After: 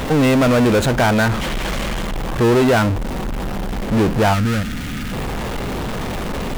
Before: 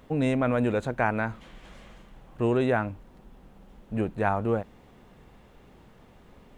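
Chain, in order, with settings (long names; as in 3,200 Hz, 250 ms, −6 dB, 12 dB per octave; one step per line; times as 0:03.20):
power curve on the samples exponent 0.35
gain on a spectral selection 0:04.34–0:05.13, 320–1,200 Hz −13 dB
level +2.5 dB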